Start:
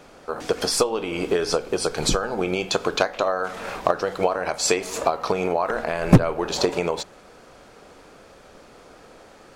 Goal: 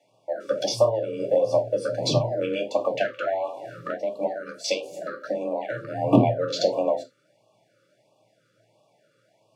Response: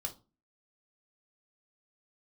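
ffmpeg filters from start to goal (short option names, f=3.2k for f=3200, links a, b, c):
-filter_complex "[0:a]afwtdn=0.0398,asettb=1/sr,asplit=3[a][b][c];[a]atrim=end=3.664[d];[b]atrim=start=3.66:end=5.91,asetpts=PTS-STARTPTS,afade=t=in:d=0.004:c=qsin,afade=t=out:st=2.246:d=0.004:c=qsin,equalizer=f=800:w=1.1:g=-12[e];[c]atrim=start=5.906[f];[d][e]acrossfade=d=0.004:c1=hsin:c2=qsin[g];[g][f]acrossfade=d=0.004:c1=qsin:c2=hsin,asoftclip=type=tanh:threshold=-5dB,afreqshift=110[h];[1:a]atrim=start_sample=2205,atrim=end_sample=4410,asetrate=42777,aresample=44100[i];[h][i]afir=irnorm=-1:irlink=0,afftfilt=real='re*(1-between(b*sr/1024,800*pow(1700/800,0.5+0.5*sin(2*PI*1.5*pts/sr))/1.41,800*pow(1700/800,0.5+0.5*sin(2*PI*1.5*pts/sr))*1.41))':imag='im*(1-between(b*sr/1024,800*pow(1700/800,0.5+0.5*sin(2*PI*1.5*pts/sr))/1.41,800*pow(1700/800,0.5+0.5*sin(2*PI*1.5*pts/sr))*1.41))':win_size=1024:overlap=0.75"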